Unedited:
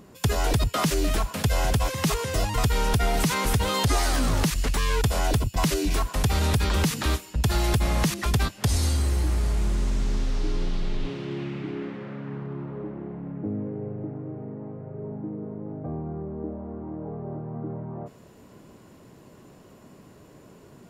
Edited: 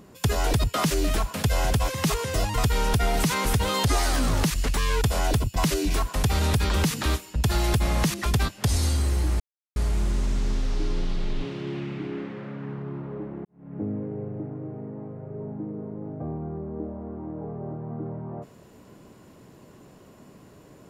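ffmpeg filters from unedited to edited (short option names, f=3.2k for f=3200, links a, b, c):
-filter_complex "[0:a]asplit=3[a][b][c];[a]atrim=end=9.4,asetpts=PTS-STARTPTS,afade=t=out:st=9.396:d=0.004:c=hsin,apad=pad_dur=0.36[d];[b]atrim=start=9.4:end=13.09,asetpts=PTS-STARTPTS,afade=t=in:d=0.004:c=hsin,afade=t=out:st=3.686:d=0.004:c=hsin[e];[c]atrim=start=13.09,asetpts=PTS-STARTPTS,afade=t=in:d=0.34:c=qua[f];[d][e][f]concat=n=3:v=0:a=1"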